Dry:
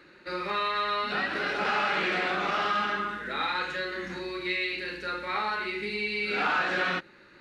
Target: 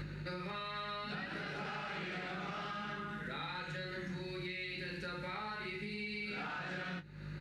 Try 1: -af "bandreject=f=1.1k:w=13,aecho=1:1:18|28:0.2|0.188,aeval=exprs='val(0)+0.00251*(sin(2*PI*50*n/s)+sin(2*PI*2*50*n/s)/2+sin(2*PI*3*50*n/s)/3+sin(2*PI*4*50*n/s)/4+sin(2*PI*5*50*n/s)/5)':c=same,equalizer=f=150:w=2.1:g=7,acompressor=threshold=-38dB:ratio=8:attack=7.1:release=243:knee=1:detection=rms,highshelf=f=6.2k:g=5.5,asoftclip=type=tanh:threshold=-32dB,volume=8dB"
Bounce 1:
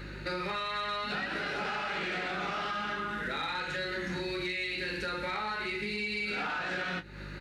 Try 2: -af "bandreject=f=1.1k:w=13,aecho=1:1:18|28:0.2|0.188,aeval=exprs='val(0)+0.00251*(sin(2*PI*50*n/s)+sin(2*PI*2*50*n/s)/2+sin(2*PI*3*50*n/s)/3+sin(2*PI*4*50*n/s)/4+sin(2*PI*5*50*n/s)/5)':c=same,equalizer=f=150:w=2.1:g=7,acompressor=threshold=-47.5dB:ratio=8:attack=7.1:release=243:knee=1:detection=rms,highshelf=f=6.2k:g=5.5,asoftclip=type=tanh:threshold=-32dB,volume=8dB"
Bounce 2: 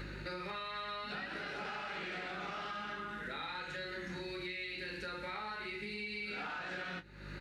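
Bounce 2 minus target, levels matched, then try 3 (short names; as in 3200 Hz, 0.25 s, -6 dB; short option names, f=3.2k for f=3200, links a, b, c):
125 Hz band -6.5 dB
-af "bandreject=f=1.1k:w=13,aecho=1:1:18|28:0.2|0.188,aeval=exprs='val(0)+0.00251*(sin(2*PI*50*n/s)+sin(2*PI*2*50*n/s)/2+sin(2*PI*3*50*n/s)/3+sin(2*PI*4*50*n/s)/4+sin(2*PI*5*50*n/s)/5)':c=same,equalizer=f=150:w=2.1:g=19,acompressor=threshold=-47.5dB:ratio=8:attack=7.1:release=243:knee=1:detection=rms,highshelf=f=6.2k:g=5.5,asoftclip=type=tanh:threshold=-32dB,volume=8dB"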